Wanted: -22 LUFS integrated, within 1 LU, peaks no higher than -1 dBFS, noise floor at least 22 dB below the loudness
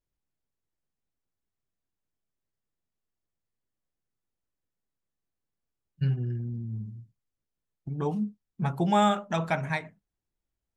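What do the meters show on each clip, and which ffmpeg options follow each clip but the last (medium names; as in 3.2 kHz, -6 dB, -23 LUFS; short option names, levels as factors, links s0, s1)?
loudness -29.5 LUFS; peak level -12.5 dBFS; loudness target -22.0 LUFS
-> -af "volume=2.37"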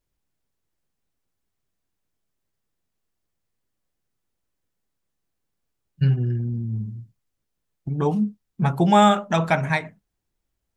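loudness -22.0 LUFS; peak level -5.0 dBFS; noise floor -79 dBFS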